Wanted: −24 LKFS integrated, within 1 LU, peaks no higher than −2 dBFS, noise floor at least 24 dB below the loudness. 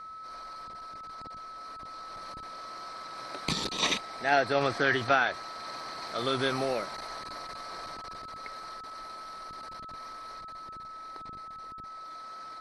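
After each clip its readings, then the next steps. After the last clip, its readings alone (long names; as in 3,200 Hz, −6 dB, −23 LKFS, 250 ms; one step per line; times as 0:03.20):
interfering tone 1,300 Hz; level of the tone −41 dBFS; integrated loudness −33.5 LKFS; sample peak −10.0 dBFS; target loudness −24.0 LKFS
→ notch filter 1,300 Hz, Q 30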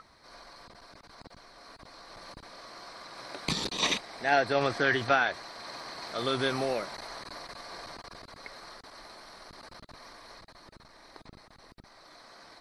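interfering tone none found; integrated loudness −30.0 LKFS; sample peak −10.0 dBFS; target loudness −24.0 LKFS
→ level +6 dB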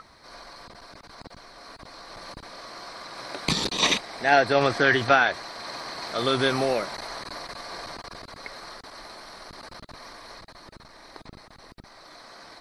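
integrated loudness −24.0 LKFS; sample peak −4.0 dBFS; background noise floor −51 dBFS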